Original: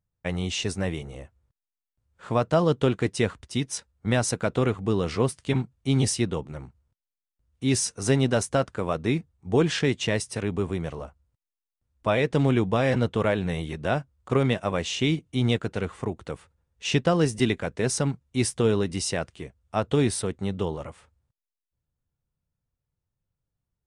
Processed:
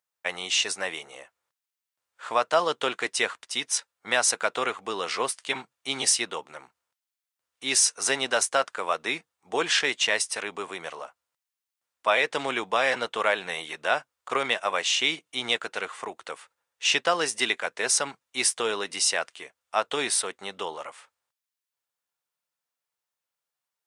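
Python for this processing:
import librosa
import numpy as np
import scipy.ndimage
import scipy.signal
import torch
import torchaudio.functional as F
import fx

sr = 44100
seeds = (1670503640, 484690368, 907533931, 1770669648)

y = scipy.signal.sosfilt(scipy.signal.butter(2, 890.0, 'highpass', fs=sr, output='sos'), x)
y = y * 10.0 ** (6.5 / 20.0)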